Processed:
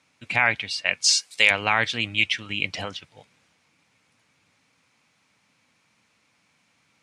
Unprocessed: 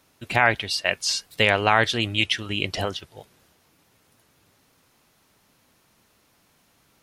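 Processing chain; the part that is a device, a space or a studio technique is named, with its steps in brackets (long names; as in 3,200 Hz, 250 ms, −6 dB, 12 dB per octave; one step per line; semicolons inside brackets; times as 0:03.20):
car door speaker (loudspeaker in its box 110–8,700 Hz, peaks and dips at 380 Hz −10 dB, 650 Hz −4 dB, 2,300 Hz +9 dB)
0:01.04–0:01.51: bass and treble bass −14 dB, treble +13 dB
level −3.5 dB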